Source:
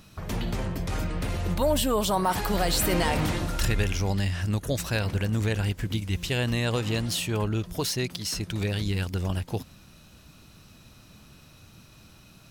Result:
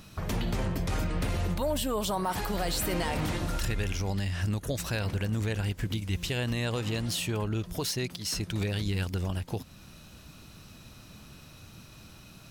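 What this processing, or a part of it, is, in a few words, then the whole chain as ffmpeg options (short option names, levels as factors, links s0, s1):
clipper into limiter: -af "asoftclip=type=hard:threshold=0.178,alimiter=limit=0.0708:level=0:latency=1:release=311,volume=1.26"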